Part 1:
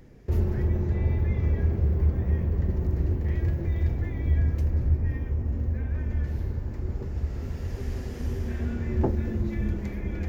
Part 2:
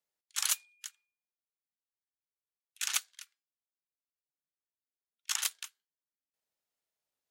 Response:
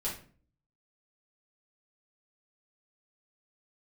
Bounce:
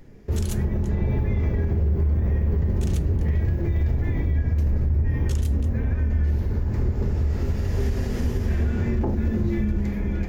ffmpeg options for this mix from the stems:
-filter_complex "[0:a]dynaudnorm=f=190:g=9:m=8.5dB,volume=-1dB,asplit=2[a][b];[b]volume=-5.5dB[c];[1:a]volume=-5.5dB,asplit=2[d][e];[e]volume=-14dB[f];[2:a]atrim=start_sample=2205[g];[c][f]amix=inputs=2:normalize=0[h];[h][g]afir=irnorm=-1:irlink=0[i];[a][d][i]amix=inputs=3:normalize=0,alimiter=limit=-15dB:level=0:latency=1:release=170"

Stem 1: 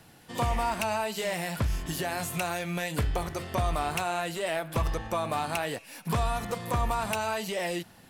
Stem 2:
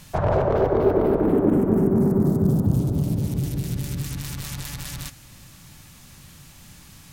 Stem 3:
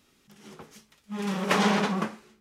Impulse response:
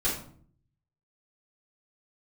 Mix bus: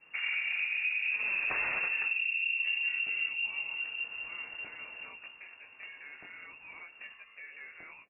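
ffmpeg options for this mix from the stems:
-filter_complex "[0:a]flanger=delay=16:depth=6.6:speed=2.6,adelay=2250,volume=-15.5dB[a];[1:a]adynamicequalizer=threshold=0.00631:dfrequency=1600:dqfactor=1.1:tfrequency=1600:tqfactor=1.1:attack=5:release=100:ratio=0.375:range=4:mode=cutabove:tftype=bell,volume=-11dB,asplit=2[b][c];[c]volume=-15dB[d];[2:a]aemphasis=mode=production:type=75kf,volume=-5dB[e];[3:a]atrim=start_sample=2205[f];[d][f]afir=irnorm=-1:irlink=0[g];[a][b][e][g]amix=inputs=4:normalize=0,highpass=f=100:w=0.5412,highpass=f=100:w=1.3066,lowpass=f=2.5k:t=q:w=0.5098,lowpass=f=2.5k:t=q:w=0.6013,lowpass=f=2.5k:t=q:w=0.9,lowpass=f=2.5k:t=q:w=2.563,afreqshift=-2900,alimiter=limit=-23.5dB:level=0:latency=1:release=123"

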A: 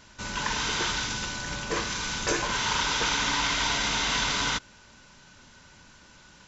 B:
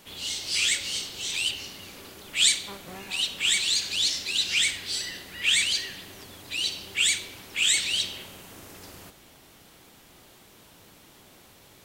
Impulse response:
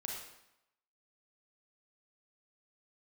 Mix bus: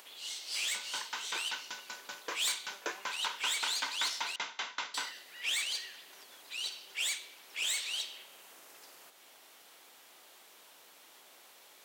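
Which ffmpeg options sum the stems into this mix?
-filter_complex "[0:a]acrossover=split=3700[a][b];[b]acompressor=threshold=-38dB:ratio=4:attack=1:release=60[c];[a][c]amix=inputs=2:normalize=0,aeval=exprs='val(0)*pow(10,-28*if(lt(mod(5.2*n/s,1),2*abs(5.2)/1000),1-mod(5.2*n/s,1)/(2*abs(5.2)/1000),(mod(5.2*n/s,1)-2*abs(5.2)/1000)/(1-2*abs(5.2)/1000))/20)':c=same,adelay=550,volume=-3dB[d];[1:a]acompressor=mode=upward:threshold=-38dB:ratio=2.5,aeval=exprs='(tanh(10*val(0)+0.55)-tanh(0.55))/10':c=same,volume=-7dB,asplit=3[e][f][g];[e]atrim=end=4.36,asetpts=PTS-STARTPTS,afade=t=out:st=4.356:d=0.004:c=hsin[h];[f]atrim=start=4.36:end=4.94,asetpts=PTS-STARTPTS,volume=0[i];[g]atrim=start=4.94,asetpts=PTS-STARTPTS,afade=t=in:d=0.004:c=hsin[j];[h][i][j]concat=n=3:v=0:a=1[k];[d][k]amix=inputs=2:normalize=0,highpass=580"

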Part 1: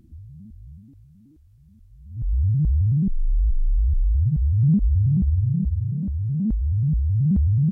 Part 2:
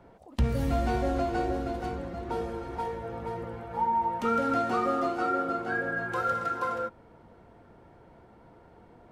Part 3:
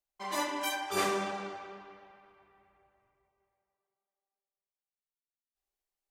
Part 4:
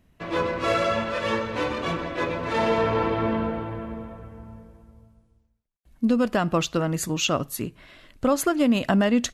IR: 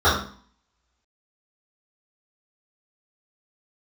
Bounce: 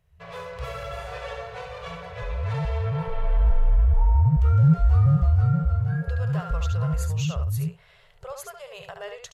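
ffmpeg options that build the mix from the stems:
-filter_complex "[0:a]dynaudnorm=f=400:g=9:m=11.5dB,volume=-8dB,afade=t=in:st=3.08:d=0.41:silence=0.354813[a];[1:a]adelay=200,volume=-10.5dB[b];[2:a]volume=-19.5dB,asplit=2[c][d];[d]volume=-5.5dB[e];[3:a]equalizer=f=210:w=4.4:g=-5,alimiter=limit=-19dB:level=0:latency=1:release=284,volume=-7.5dB,asplit=2[f][g];[g]volume=-6dB[h];[e][h]amix=inputs=2:normalize=0,aecho=0:1:71:1[i];[a][b][c][f][i]amix=inputs=5:normalize=0,afftfilt=real='re*(1-between(b*sr/4096,180,390))':imag='im*(1-between(b*sr/4096,180,390))':win_size=4096:overlap=0.75"

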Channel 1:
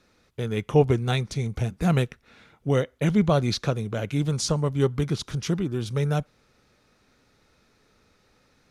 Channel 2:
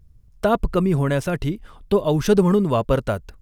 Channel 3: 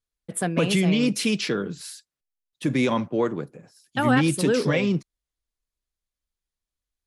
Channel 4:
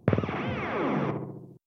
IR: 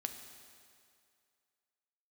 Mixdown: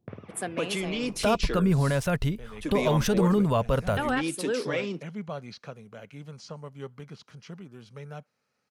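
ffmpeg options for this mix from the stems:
-filter_complex "[0:a]bandreject=f=3.6k:w=7.2,acrossover=split=5100[a][b];[b]acompressor=threshold=-56dB:ratio=4:attack=1:release=60[c];[a][c]amix=inputs=2:normalize=0,highpass=180,adelay=2000,volume=-12.5dB[d];[1:a]adelay=800,volume=-1dB[e];[2:a]highpass=280,volume=-5.5dB[f];[3:a]volume=-17.5dB[g];[d][e]amix=inputs=2:normalize=0,equalizer=f=330:t=o:w=0.52:g=-10,alimiter=limit=-15dB:level=0:latency=1:release=53,volume=0dB[h];[f][g][h]amix=inputs=3:normalize=0"

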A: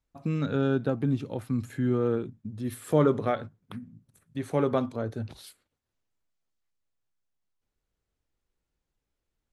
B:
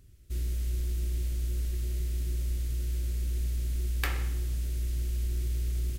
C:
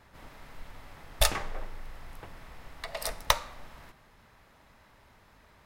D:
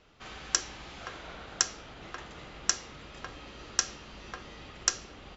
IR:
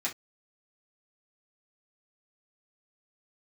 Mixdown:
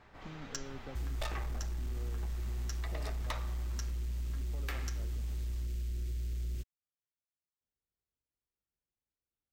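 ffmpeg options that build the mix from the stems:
-filter_complex "[0:a]highpass=43,acompressor=threshold=-36dB:ratio=2,volume=-13.5dB[a];[1:a]adelay=650,volume=-0.5dB[b];[2:a]lowpass=f=2.9k:p=1,volume=-2dB,asplit=2[c][d];[d]volume=-10dB[e];[3:a]aecho=1:1:7.3:0.65,volume=-13dB[f];[4:a]atrim=start_sample=2205[g];[e][g]afir=irnorm=-1:irlink=0[h];[a][b][c][f][h]amix=inputs=5:normalize=0,equalizer=f=11k:t=o:w=0.46:g=-10.5,asoftclip=type=tanh:threshold=-24.5dB,acompressor=threshold=-34dB:ratio=6"

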